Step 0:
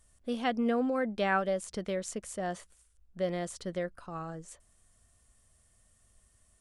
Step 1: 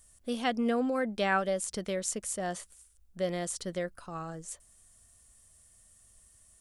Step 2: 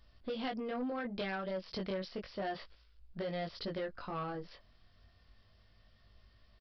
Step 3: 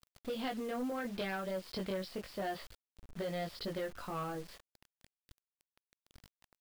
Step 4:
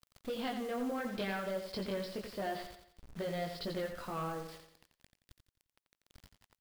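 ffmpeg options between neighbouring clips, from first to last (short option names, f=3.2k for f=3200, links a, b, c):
-af "highshelf=f=4.9k:g=11"
-af "acompressor=threshold=-34dB:ratio=12,flanger=delay=18.5:depth=2.9:speed=0.31,aresample=11025,asoftclip=type=tanh:threshold=-38.5dB,aresample=44100,volume=6.5dB"
-af "acrusher=bits=8:mix=0:aa=0.000001"
-af "aecho=1:1:87|174|261|348|435:0.398|0.171|0.0736|0.0317|0.0136"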